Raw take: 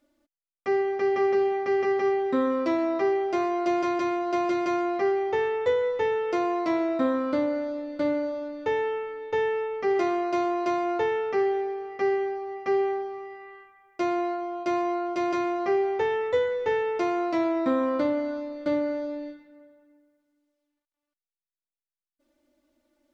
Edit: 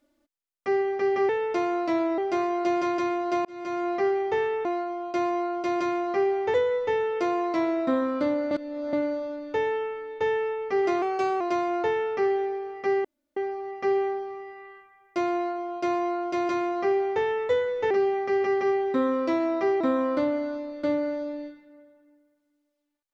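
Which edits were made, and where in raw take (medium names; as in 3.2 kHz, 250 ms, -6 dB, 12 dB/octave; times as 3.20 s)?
1.29–3.19 s: swap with 16.74–17.63 s
4.46–4.91 s: fade in
7.63–8.05 s: reverse
10.14–10.56 s: speed 109%
12.20 s: insert room tone 0.32 s
14.17–16.06 s: copy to 5.66 s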